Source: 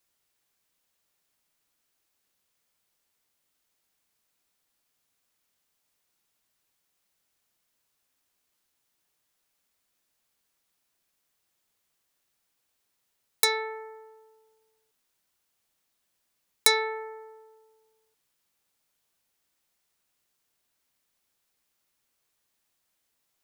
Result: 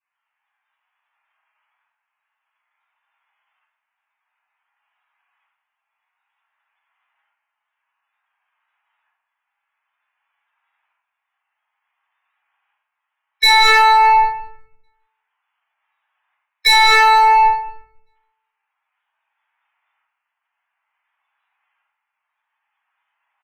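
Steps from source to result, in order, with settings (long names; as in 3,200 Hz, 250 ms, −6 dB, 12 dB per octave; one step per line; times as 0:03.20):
adaptive Wiener filter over 9 samples
low-pass filter 6,800 Hz 24 dB per octave
gate on every frequency bin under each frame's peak −10 dB strong
Chebyshev high-pass filter 860 Hz, order 4
downward expander −55 dBFS
leveller curve on the samples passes 2
shaped tremolo saw up 0.55 Hz, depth 70%
far-end echo of a speakerphone 160 ms, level −14 dB
rectangular room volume 180 cubic metres, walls mixed, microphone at 5.7 metres
envelope flattener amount 100%
level +1.5 dB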